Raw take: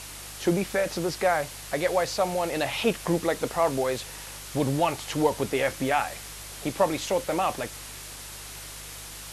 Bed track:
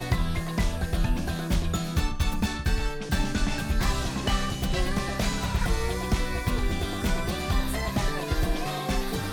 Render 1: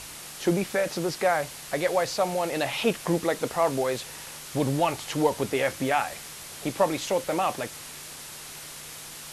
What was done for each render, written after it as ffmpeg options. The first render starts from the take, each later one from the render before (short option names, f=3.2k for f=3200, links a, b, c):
-af "bandreject=f=50:t=h:w=4,bandreject=f=100:t=h:w=4"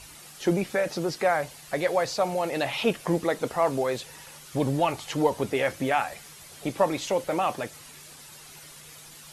-af "afftdn=nr=9:nf=-42"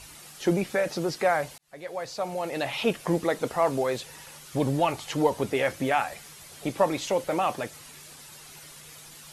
-filter_complex "[0:a]asplit=2[a][b];[a]atrim=end=1.58,asetpts=PTS-STARTPTS,afade=t=out:st=1.576:d=0.004:c=hsin[c];[b]atrim=start=1.58,asetpts=PTS-STARTPTS,afade=t=in:d=1.78:c=qsin[d];[c][d]concat=n=2:v=0:a=1"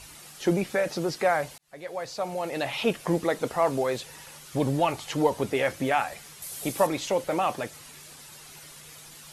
-filter_complex "[0:a]asettb=1/sr,asplit=3[a][b][c];[a]atrim=end=6.424[d];[b]atrim=start=6.42:end=6.87,asetpts=PTS-STARTPTS,afade=t=in:d=0.004:c=qsin,afade=t=out:st=0.446:d=0.004:c=qsin,aemphasis=mode=production:type=50fm[e];[c]atrim=start=6.866[f];[d][e]acrossfade=d=0.004:c1=hsin:c2=qsin[g];[g][f]acrossfade=d=0.004:c1=qsin:c2=hsin"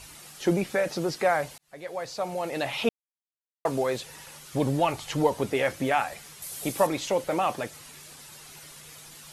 -filter_complex "[0:a]asettb=1/sr,asplit=3[a][b][c];[a]atrim=end=4.804[d];[b]atrim=start=4.8:end=5.24,asetpts=PTS-STARTPTS,afade=t=in:d=0.004:c=qsin,afade=t=out:st=0.436:d=0.004:c=qsin,asubboost=boost=11:cutoff=170[e];[c]atrim=start=5.236[f];[d][e]acrossfade=d=0.004:c1=hsin:c2=qsin[g];[g][f]acrossfade=d=0.004:c1=qsin:c2=hsin,asplit=3[h][i][j];[h]atrim=end=2.89,asetpts=PTS-STARTPTS,afade=t=out:st=2.886:d=0.004:c=hsin[k];[i]atrim=start=2.89:end=3.65,asetpts=PTS-STARTPTS,volume=0[l];[j]atrim=start=3.65,asetpts=PTS-STARTPTS,afade=t=in:d=0.004:c=hsin[m];[k][l][m]concat=n=3:v=0:a=1"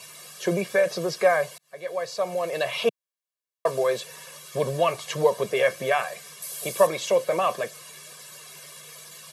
-af "highpass=f=160:w=0.5412,highpass=f=160:w=1.3066,aecho=1:1:1.8:0.91"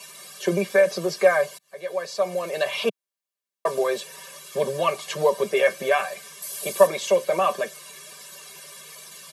-af "highpass=f=170:w=0.5412,highpass=f=170:w=1.3066,aecho=1:1:5.1:0.61"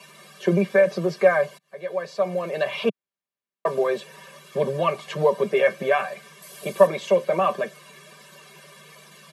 -af "highpass=140,bass=f=250:g=10,treble=f=4k:g=-12"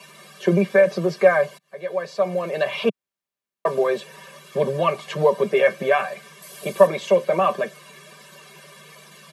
-af "volume=2dB,alimiter=limit=-2dB:level=0:latency=1"